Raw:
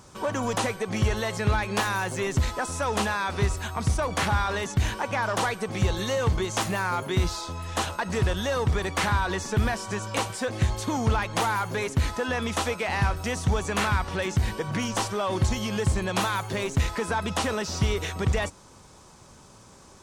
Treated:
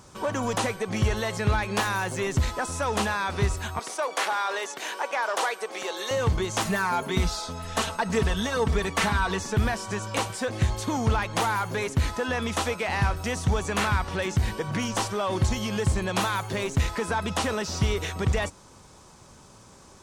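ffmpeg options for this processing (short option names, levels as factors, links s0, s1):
-filter_complex "[0:a]asettb=1/sr,asplit=3[s0][s1][s2];[s0]atrim=end=3.794[s3];[s1]atrim=start=3.79:end=6.11,asetpts=PTS-STARTPTS,afade=t=in:d=0.004:c=qsin,afade=t=out:st=2.316:d=0.004:c=qsin,highpass=f=390:w=0.5412,highpass=f=390:w=1.3066[s4];[s2]atrim=start=6.106[s5];[s3][s4]acrossfade=d=0.004:c1=hsin:c2=qsin[s6];[s6][s5]acrossfade=d=0.004:c1=qsin:c2=hsin,asettb=1/sr,asplit=3[s7][s8][s9];[s7]atrim=end=6.654[s10];[s8]atrim=start=6.65:end=9.4,asetpts=PTS-STARTPTS,afade=t=in:d=0.004:c=qsin,afade=t=out:st=2.746:d=0.004:c=qsin,aecho=1:1:4.5:0.65,atrim=end_sample=121275[s11];[s9]atrim=start=9.396[s12];[s10][s11]acrossfade=d=0.004:c1=hsin:c2=qsin[s13];[s13][s12]acrossfade=d=0.004:c1=qsin:c2=hsin"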